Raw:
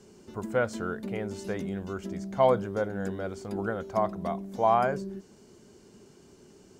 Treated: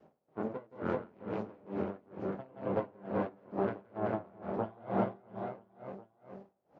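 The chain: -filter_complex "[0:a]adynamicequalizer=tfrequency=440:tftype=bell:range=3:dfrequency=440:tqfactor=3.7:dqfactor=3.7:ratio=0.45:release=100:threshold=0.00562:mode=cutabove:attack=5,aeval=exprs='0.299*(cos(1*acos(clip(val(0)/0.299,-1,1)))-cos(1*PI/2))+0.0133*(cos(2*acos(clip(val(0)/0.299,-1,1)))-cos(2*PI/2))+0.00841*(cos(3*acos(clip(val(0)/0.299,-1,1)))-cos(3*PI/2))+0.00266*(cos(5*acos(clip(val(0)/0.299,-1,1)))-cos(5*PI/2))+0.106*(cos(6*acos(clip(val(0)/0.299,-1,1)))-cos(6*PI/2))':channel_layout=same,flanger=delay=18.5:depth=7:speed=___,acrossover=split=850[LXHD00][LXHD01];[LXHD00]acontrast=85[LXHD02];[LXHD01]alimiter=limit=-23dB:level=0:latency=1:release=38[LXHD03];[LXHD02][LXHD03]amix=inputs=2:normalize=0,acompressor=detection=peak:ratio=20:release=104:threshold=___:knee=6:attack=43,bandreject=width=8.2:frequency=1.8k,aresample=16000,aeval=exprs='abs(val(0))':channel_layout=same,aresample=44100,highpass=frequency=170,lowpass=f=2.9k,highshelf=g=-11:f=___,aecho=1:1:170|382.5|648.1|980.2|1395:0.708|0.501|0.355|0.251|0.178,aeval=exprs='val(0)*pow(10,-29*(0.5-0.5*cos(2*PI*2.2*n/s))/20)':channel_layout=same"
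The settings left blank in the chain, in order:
1.5, -23dB, 2.1k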